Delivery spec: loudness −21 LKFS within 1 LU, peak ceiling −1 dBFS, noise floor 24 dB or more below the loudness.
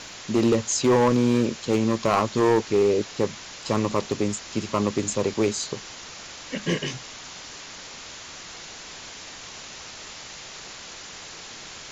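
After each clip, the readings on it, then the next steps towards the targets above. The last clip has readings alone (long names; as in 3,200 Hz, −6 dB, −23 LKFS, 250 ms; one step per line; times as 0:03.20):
share of clipped samples 1.4%; peaks flattened at −14.0 dBFS; background noise floor −41 dBFS; target noise floor −48 dBFS; integrated loudness −24.0 LKFS; sample peak −14.0 dBFS; target loudness −21.0 LKFS
→ clipped peaks rebuilt −14 dBFS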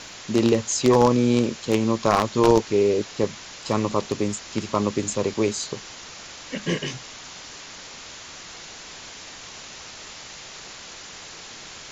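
share of clipped samples 0.0%; background noise floor −41 dBFS; target noise floor −47 dBFS
→ broadband denoise 6 dB, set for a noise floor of −41 dBFS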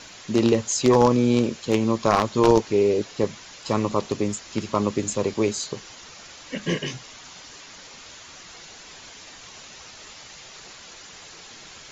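background noise floor −44 dBFS; target noise floor −47 dBFS
→ broadband denoise 6 dB, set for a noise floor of −44 dBFS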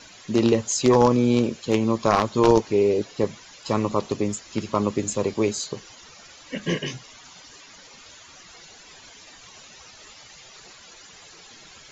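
background noise floor −48 dBFS; integrated loudness −22.5 LKFS; sample peak −5.0 dBFS; target loudness −21.0 LKFS
→ level +1.5 dB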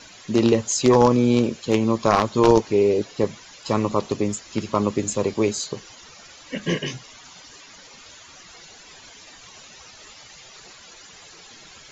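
integrated loudness −21.0 LKFS; sample peak −3.5 dBFS; background noise floor −46 dBFS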